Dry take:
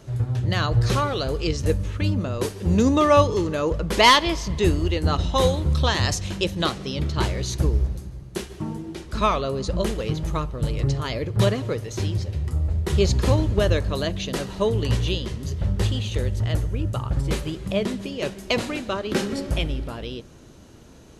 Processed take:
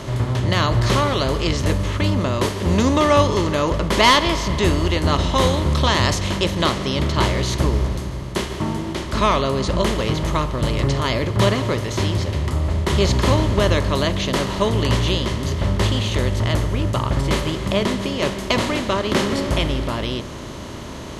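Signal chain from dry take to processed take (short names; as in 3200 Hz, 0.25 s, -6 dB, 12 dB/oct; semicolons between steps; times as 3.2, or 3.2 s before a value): per-bin compression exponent 0.6; notch 470 Hz, Q 12; gain -1 dB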